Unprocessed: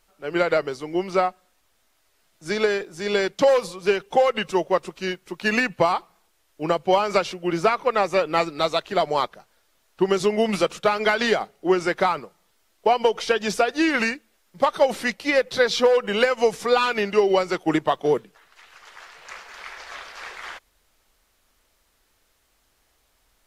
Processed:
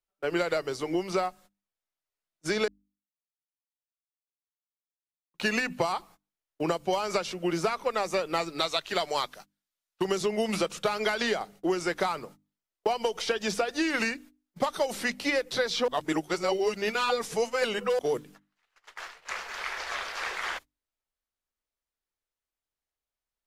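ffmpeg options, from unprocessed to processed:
-filter_complex "[0:a]asettb=1/sr,asplit=3[a][b][c];[a]atrim=end=8.604[d];[b]atrim=start=8.6:end=10.05,asetpts=PTS-STARTPTS,afade=t=in:d=0.004:c=qsin,afade=t=out:st=1.446:d=0.004:c=qsin,tiltshelf=f=1.4k:g=-6[e];[c]atrim=start=10.046[f];[d][e]acrossfade=d=0.004:c1=hsin:c2=qsin[g];[g][f]acrossfade=d=0.004:c1=qsin:c2=hsin,asplit=5[h][i][j][k][l];[h]atrim=end=2.68,asetpts=PTS-STARTPTS,afade=t=out:st=2.676:d=0.004:c=hsin[m];[i]atrim=start=2.68:end=5.34,asetpts=PTS-STARTPTS,volume=0[n];[j]atrim=start=5.34:end=15.882,asetpts=PTS-STARTPTS,afade=t=in:d=0.004:c=hsin[o];[k]atrim=start=15.878:end=17.992,asetpts=PTS-STARTPTS,areverse[p];[l]atrim=start=17.988[q];[m][n][o]concat=n=3:v=0:a=1[r];[r][p]acrossfade=d=0.004:c1=hsin:c2=hsin[s];[s][q]acrossfade=d=0.004:c1=hsin:c2=hsin,agate=range=-32dB:threshold=-44dB:ratio=16:detection=peak,bandreject=f=50:t=h:w=6,bandreject=f=100:t=h:w=6,bandreject=f=150:t=h:w=6,bandreject=f=200:t=h:w=6,bandreject=f=250:t=h:w=6,bandreject=f=300:t=h:w=6,acrossover=split=99|4900[t][u][v];[t]acompressor=threshold=-59dB:ratio=4[w];[u]acompressor=threshold=-31dB:ratio=4[x];[v]acompressor=threshold=-44dB:ratio=4[y];[w][x][y]amix=inputs=3:normalize=0,volume=4dB"

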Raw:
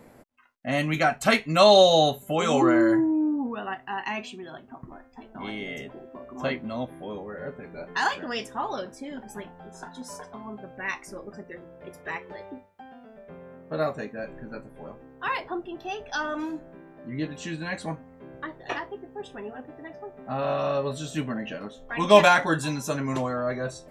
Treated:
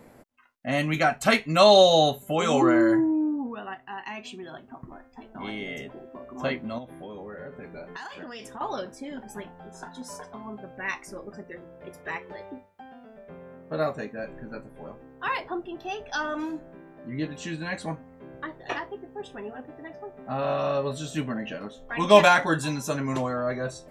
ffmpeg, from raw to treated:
-filter_complex "[0:a]asettb=1/sr,asplit=3[a][b][c];[a]atrim=end=6.784[d];[b]atrim=start=6.78:end=8.61,asetpts=PTS-STARTPTS,afade=t=in:d=0.004:c=qsin,afade=t=out:st=1.826:d=0.004:c=qsin,acompressor=threshold=-35dB:ratio=12:attack=3.2:release=140:knee=1:detection=peak[e];[c]atrim=start=8.606[f];[d][e]acrossfade=d=0.004:c1=hsin:c2=qsin[g];[g][f]acrossfade=d=0.004:c1=qsin:c2=hsin,asplit=2[h][i];[h]atrim=end=4.25,asetpts=PTS-STARTPTS,afade=t=out:st=3.09:d=1.16:c=qua:silence=0.501187[j];[i]atrim=start=4.25,asetpts=PTS-STARTPTS,afade=t=in:d=0.004:c=hsin:silence=0.501187[k];[j][k]concat=n=2:v=0:a=1"

